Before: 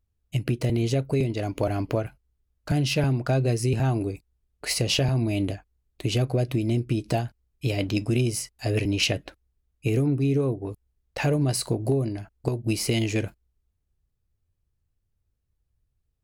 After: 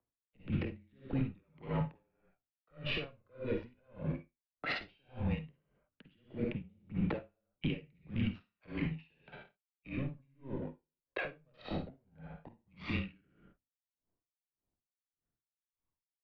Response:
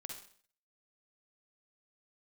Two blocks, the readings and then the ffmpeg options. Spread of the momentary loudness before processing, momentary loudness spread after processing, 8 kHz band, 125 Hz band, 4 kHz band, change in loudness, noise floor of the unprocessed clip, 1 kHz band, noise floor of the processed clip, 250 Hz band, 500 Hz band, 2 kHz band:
9 LU, 16 LU, under -40 dB, -16.5 dB, -17.0 dB, -14.0 dB, -76 dBFS, -13.0 dB, under -85 dBFS, -12.5 dB, -16.5 dB, -9.5 dB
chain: -filter_complex "[0:a]acrossover=split=260|500|2100[a][b][c][d];[b]aeval=exprs='sgn(val(0))*max(abs(val(0))-0.00251,0)':c=same[e];[a][e][c][d]amix=inputs=4:normalize=0,adynamicsmooth=sensitivity=6:basefreq=1k,highpass=f=250:t=q:w=0.5412,highpass=f=250:t=q:w=1.307,lowpass=f=3.5k:t=q:w=0.5176,lowpass=f=3.5k:t=q:w=0.7071,lowpass=f=3.5k:t=q:w=1.932,afreqshift=-140,acompressor=threshold=-34dB:ratio=6,alimiter=level_in=9.5dB:limit=-24dB:level=0:latency=1:release=29,volume=-9.5dB,aphaser=in_gain=1:out_gain=1:delay=2.1:decay=0.52:speed=0.14:type=triangular[f];[1:a]atrim=start_sample=2205,afade=t=out:st=0.33:d=0.01,atrim=end_sample=14994[g];[f][g]afir=irnorm=-1:irlink=0,aeval=exprs='val(0)*pow(10,-39*(0.5-0.5*cos(2*PI*1.7*n/s))/20)':c=same,volume=12dB"

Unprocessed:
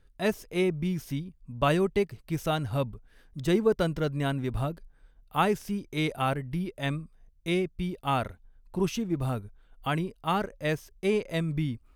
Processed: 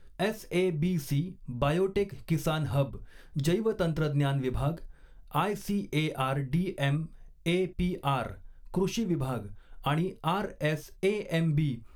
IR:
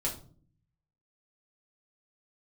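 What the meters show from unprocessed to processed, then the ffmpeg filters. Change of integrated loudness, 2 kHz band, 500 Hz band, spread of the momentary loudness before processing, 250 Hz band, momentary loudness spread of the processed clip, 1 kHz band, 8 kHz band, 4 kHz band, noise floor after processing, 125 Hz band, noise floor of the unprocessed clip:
-0.5 dB, -2.0 dB, -1.5 dB, 10 LU, -0.5 dB, 8 LU, -2.5 dB, +0.5 dB, -1.0 dB, -53 dBFS, +2.0 dB, -60 dBFS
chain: -filter_complex "[0:a]acompressor=threshold=-32dB:ratio=5,asplit=2[a][b];[1:a]atrim=start_sample=2205,atrim=end_sample=3528[c];[b][c]afir=irnorm=-1:irlink=0,volume=-9.5dB[d];[a][d]amix=inputs=2:normalize=0,volume=3.5dB"

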